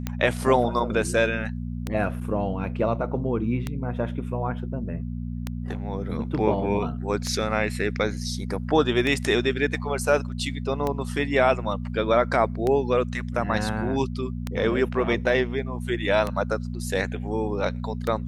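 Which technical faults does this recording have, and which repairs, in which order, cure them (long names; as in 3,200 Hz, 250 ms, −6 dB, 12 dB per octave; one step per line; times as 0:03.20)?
mains hum 60 Hz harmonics 4 −31 dBFS
scratch tick 33 1/3 rpm −13 dBFS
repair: click removal
hum removal 60 Hz, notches 4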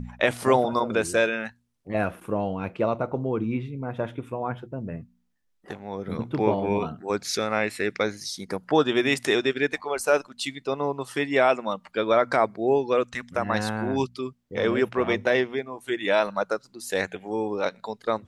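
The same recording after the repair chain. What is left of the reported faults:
none of them is left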